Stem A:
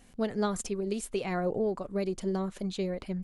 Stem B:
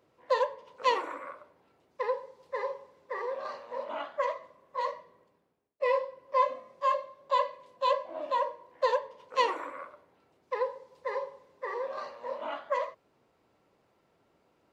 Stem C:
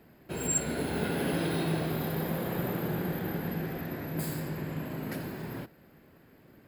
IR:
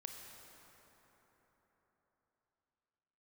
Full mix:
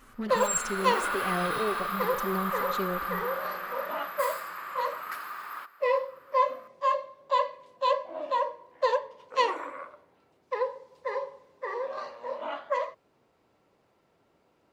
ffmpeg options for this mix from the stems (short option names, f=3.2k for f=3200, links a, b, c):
-filter_complex "[0:a]asoftclip=type=tanh:threshold=-27.5dB,asplit=2[a][b];[b]adelay=4.3,afreqshift=-1.9[c];[a][c]amix=inputs=2:normalize=1,volume=0dB,asplit=2[d][e];[e]volume=-4dB[f];[1:a]volume=1.5dB[g];[2:a]highpass=f=1.2k:t=q:w=13,volume=-1.5dB,asplit=2[h][i];[i]volume=-13dB[j];[3:a]atrim=start_sample=2205[k];[f][j]amix=inputs=2:normalize=0[l];[l][k]afir=irnorm=-1:irlink=0[m];[d][g][h][m]amix=inputs=4:normalize=0"